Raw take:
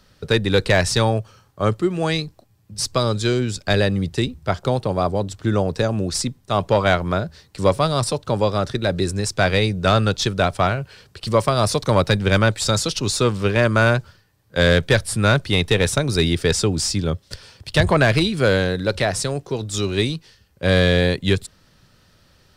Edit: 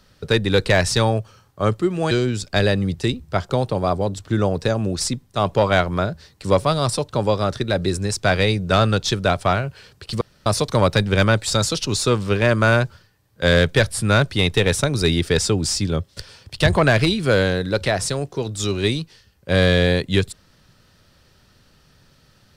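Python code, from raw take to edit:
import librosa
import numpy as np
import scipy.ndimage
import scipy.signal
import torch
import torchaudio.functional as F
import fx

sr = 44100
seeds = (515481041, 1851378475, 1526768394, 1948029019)

y = fx.edit(x, sr, fx.cut(start_s=2.11, length_s=1.14),
    fx.room_tone_fill(start_s=11.35, length_s=0.25), tone=tone)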